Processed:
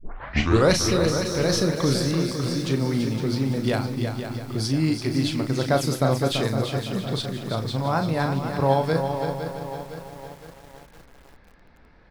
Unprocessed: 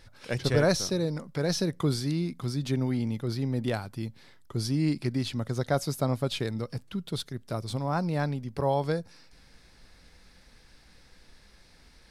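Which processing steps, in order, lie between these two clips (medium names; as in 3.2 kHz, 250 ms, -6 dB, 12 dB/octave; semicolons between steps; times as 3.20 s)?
tape start-up on the opening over 0.73 s; level-controlled noise filter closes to 1.4 kHz, open at -24.5 dBFS; bass shelf 230 Hz -3.5 dB; doubling 37 ms -8 dB; feedback delay 335 ms, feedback 38%, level -7.5 dB; bit-crushed delay 511 ms, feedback 55%, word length 8-bit, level -9 dB; trim +5.5 dB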